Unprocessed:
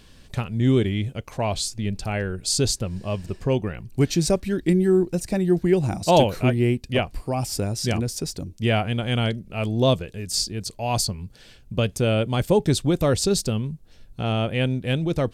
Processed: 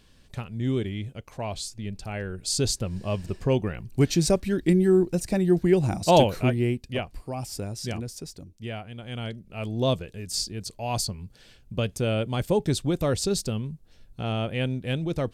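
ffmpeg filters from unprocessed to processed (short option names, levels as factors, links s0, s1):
-af "volume=3.35,afade=t=in:st=2.07:d=1:silence=0.473151,afade=t=out:st=6.16:d=0.85:silence=0.473151,afade=t=out:st=7.83:d=1.07:silence=0.375837,afade=t=in:st=8.9:d=1.04:silence=0.266073"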